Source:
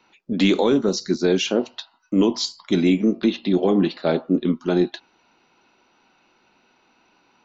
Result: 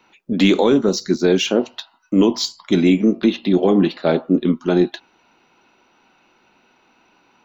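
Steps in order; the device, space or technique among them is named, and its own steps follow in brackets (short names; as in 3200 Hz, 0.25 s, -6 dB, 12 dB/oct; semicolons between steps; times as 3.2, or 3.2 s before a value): exciter from parts (in parallel at -6 dB: HPF 4400 Hz 24 dB/oct + soft clip -34.5 dBFS, distortion -5 dB); on the sum: gain +3.5 dB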